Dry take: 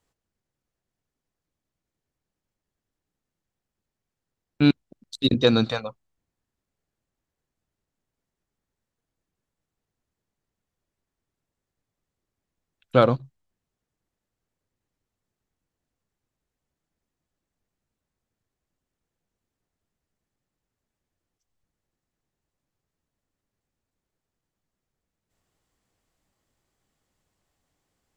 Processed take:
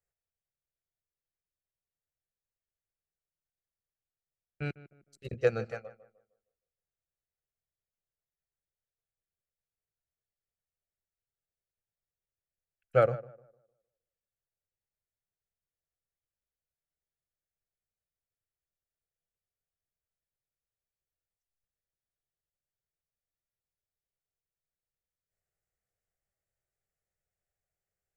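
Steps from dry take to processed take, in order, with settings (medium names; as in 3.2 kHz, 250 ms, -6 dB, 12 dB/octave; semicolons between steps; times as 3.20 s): static phaser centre 1 kHz, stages 6; tape echo 154 ms, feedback 37%, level -11 dB, low-pass 1.6 kHz; upward expansion 1.5:1, over -34 dBFS; trim -4 dB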